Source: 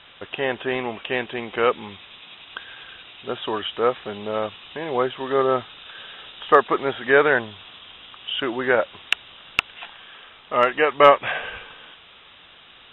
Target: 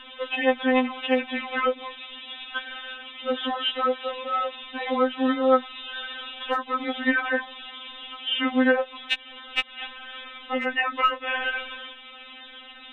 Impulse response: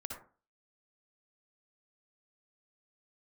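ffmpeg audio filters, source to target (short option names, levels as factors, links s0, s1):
-filter_complex "[0:a]aeval=exprs='val(0)+0.002*(sin(2*PI*60*n/s)+sin(2*PI*2*60*n/s)/2+sin(2*PI*3*60*n/s)/3+sin(2*PI*4*60*n/s)/4+sin(2*PI*5*60*n/s)/5)':c=same,acrossover=split=170|4400[s0][s1][s2];[s0]acompressor=threshold=0.00501:ratio=4[s3];[s1]acompressor=threshold=0.0631:ratio=4[s4];[s2]acompressor=threshold=0.00141:ratio=4[s5];[s3][s4][s5]amix=inputs=3:normalize=0,afftfilt=real='re*3.46*eq(mod(b,12),0)':imag='im*3.46*eq(mod(b,12),0)':win_size=2048:overlap=0.75,volume=2.11"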